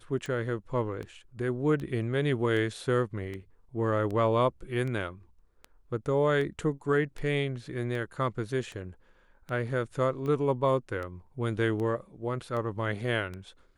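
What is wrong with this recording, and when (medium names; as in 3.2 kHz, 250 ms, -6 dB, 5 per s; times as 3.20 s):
tick 78 rpm -26 dBFS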